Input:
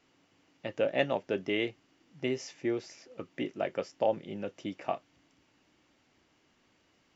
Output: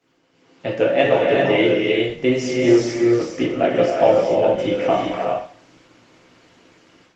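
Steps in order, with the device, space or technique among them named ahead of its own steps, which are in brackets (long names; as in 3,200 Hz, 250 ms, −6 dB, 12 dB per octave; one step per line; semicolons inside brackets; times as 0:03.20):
0:04.10–0:04.85: parametric band 1,900 Hz +2.5 dB 1.2 octaves
reverb whose tail is shaped and stops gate 430 ms rising, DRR 0 dB
far-field microphone of a smart speaker (convolution reverb RT60 0.45 s, pre-delay 7 ms, DRR −3 dB; high-pass filter 93 Hz 24 dB per octave; automatic gain control gain up to 11 dB; Opus 20 kbit/s 48,000 Hz)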